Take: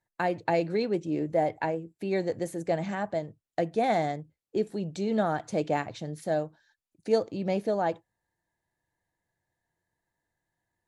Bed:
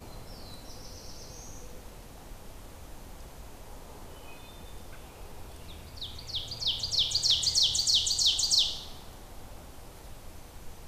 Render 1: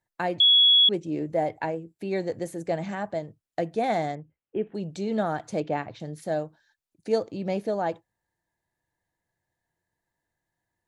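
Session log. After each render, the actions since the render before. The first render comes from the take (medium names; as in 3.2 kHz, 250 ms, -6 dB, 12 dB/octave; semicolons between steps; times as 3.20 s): 0.40–0.89 s: bleep 3.36 kHz -14 dBFS; 4.15–4.75 s: elliptic low-pass 3 kHz; 5.60–6.00 s: distance through air 140 m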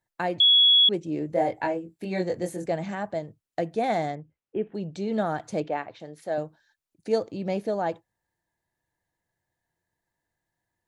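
1.33–2.66 s: doubling 22 ms -2 dB; 4.10–5.14 s: distance through air 52 m; 5.68–6.38 s: tone controls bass -13 dB, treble -6 dB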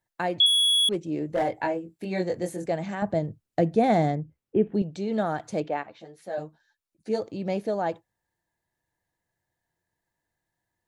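0.46–1.51 s: hard clipper -20 dBFS; 3.02–4.82 s: bass shelf 390 Hz +12 dB; 5.83–7.22 s: three-phase chorus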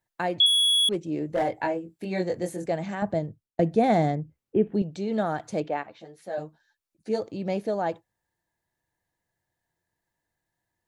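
2.98–3.59 s: fade out equal-power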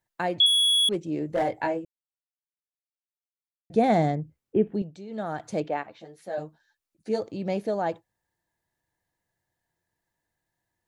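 1.85–3.70 s: mute; 4.60–5.51 s: dip -11.5 dB, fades 0.43 s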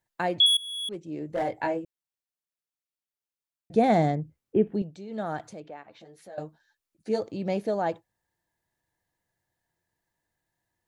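0.57–1.81 s: fade in, from -21.5 dB; 5.47–6.38 s: compression 2:1, threshold -49 dBFS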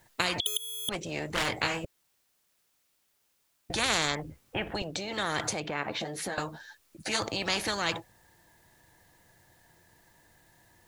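spectrum-flattening compressor 10:1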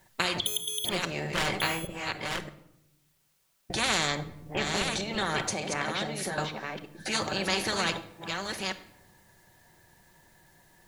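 chunks repeated in reverse 623 ms, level -4.5 dB; simulated room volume 2400 m³, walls furnished, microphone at 1.1 m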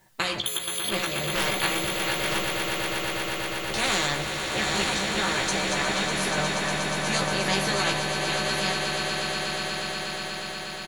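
doubling 15 ms -4.5 dB; echo with a slow build-up 120 ms, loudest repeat 8, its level -9 dB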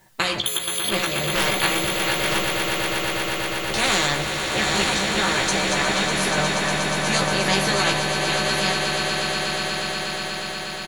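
trim +4.5 dB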